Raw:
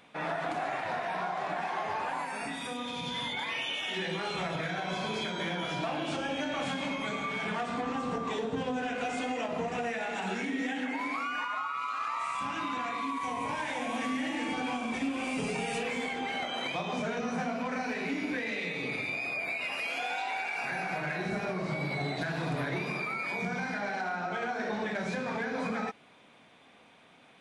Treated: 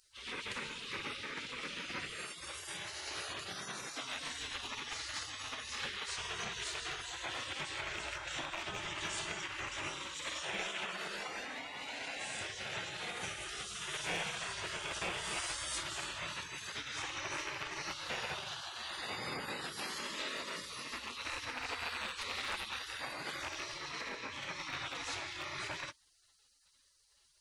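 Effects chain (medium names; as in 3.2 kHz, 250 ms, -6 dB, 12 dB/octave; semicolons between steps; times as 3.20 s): rattle on loud lows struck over -35 dBFS, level -34 dBFS; spectral gate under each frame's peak -20 dB weak; trim +5.5 dB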